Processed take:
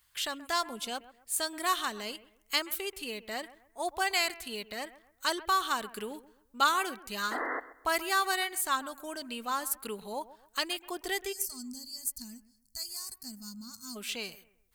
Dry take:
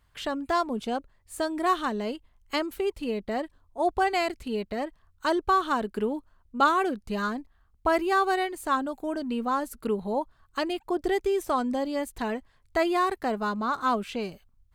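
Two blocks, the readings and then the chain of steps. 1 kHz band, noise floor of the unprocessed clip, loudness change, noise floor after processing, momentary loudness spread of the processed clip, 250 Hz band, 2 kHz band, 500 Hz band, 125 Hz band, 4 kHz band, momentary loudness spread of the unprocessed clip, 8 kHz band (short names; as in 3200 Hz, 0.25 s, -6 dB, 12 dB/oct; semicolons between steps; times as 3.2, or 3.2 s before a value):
-6.0 dB, -65 dBFS, -4.5 dB, -69 dBFS, 14 LU, -13.0 dB, -1.0 dB, -11.5 dB, n/a, +4.5 dB, 10 LU, +10.0 dB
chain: spectral gain 11.33–13.96, 270–4200 Hz -27 dB; tilt shelf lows -10 dB, about 1200 Hz; painted sound noise, 7.31–7.6, 260–2100 Hz -30 dBFS; high shelf 8800 Hz +9.5 dB; on a send: analogue delay 0.13 s, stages 2048, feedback 31%, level -17 dB; on the sum: gain -4 dB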